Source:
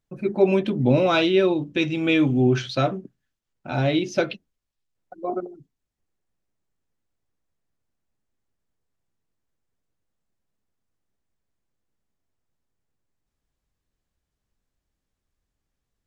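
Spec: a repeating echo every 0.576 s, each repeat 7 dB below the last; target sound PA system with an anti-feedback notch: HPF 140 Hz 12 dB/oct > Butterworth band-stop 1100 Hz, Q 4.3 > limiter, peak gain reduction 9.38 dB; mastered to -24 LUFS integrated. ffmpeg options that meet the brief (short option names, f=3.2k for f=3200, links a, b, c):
-af "highpass=140,asuperstop=centerf=1100:order=8:qfactor=4.3,aecho=1:1:576|1152|1728|2304|2880:0.447|0.201|0.0905|0.0407|0.0183,volume=2.5dB,alimiter=limit=-13.5dB:level=0:latency=1"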